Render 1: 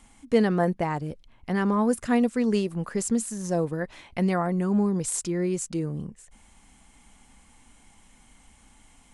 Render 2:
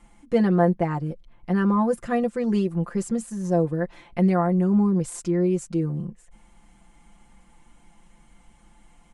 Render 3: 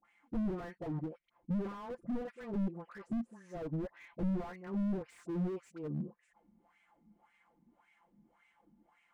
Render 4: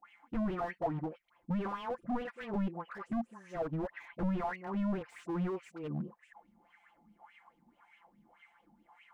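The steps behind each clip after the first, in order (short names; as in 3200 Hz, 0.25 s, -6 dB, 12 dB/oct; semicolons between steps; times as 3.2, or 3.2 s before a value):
high shelf 2200 Hz -10.5 dB; comb 5.8 ms, depth 85%
dispersion highs, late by 49 ms, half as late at 910 Hz; wah 1.8 Hz 210–2300 Hz, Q 3.6; slew limiter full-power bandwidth 5.5 Hz
LFO bell 4.7 Hz 720–3100 Hz +17 dB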